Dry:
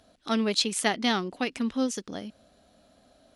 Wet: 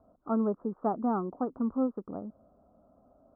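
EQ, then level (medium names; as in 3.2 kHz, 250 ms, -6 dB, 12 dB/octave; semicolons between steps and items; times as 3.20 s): steep low-pass 1.3 kHz 72 dB/octave; -1.5 dB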